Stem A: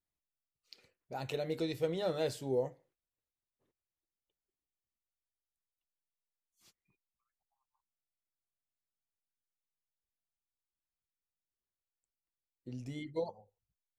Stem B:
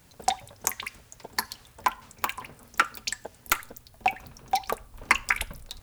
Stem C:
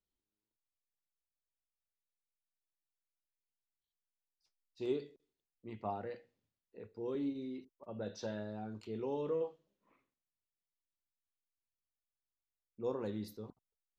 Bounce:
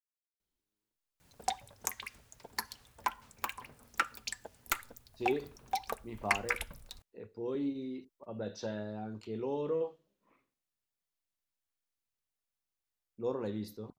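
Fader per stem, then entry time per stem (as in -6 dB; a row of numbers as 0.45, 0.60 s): off, -8.5 dB, +2.5 dB; off, 1.20 s, 0.40 s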